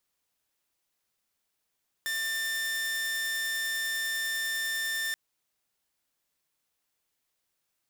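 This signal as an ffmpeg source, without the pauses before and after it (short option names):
-f lavfi -i "aevalsrc='0.0473*(2*mod(1790*t,1)-1)':d=3.08:s=44100"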